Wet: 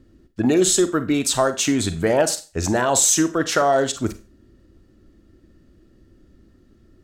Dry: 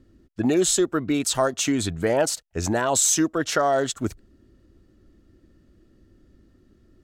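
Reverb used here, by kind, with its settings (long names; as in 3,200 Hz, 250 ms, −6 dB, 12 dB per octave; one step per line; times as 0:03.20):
four-comb reverb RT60 0.31 s, combs from 33 ms, DRR 11 dB
level +3 dB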